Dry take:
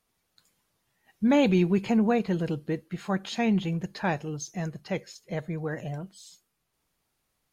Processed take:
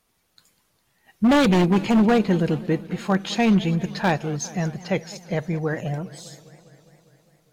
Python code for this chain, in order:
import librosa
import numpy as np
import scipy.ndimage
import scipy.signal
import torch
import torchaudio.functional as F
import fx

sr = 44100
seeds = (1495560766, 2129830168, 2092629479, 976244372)

y = 10.0 ** (-18.5 / 20.0) * (np.abs((x / 10.0 ** (-18.5 / 20.0) + 3.0) % 4.0 - 2.0) - 1.0)
y = fx.echo_warbled(y, sr, ms=202, feedback_pct=71, rate_hz=2.8, cents=174, wet_db=-18.5)
y = y * librosa.db_to_amplitude(7.0)